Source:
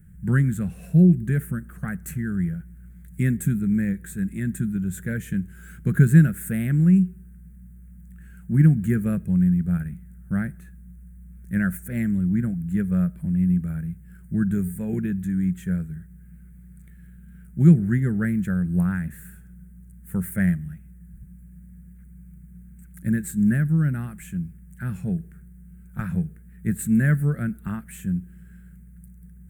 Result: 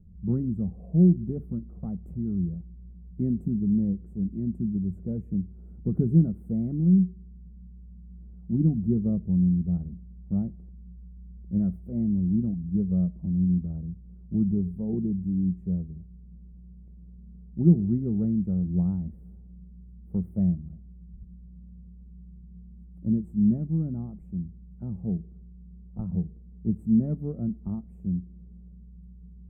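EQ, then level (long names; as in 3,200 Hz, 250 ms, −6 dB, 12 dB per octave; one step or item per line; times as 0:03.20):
inverse Chebyshev low-pass filter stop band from 1,500 Hz, stop band 40 dB
parametric band 140 Hz −14.5 dB 0.32 octaves
dynamic equaliser 560 Hz, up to −5 dB, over −49 dBFS, Q 2
0.0 dB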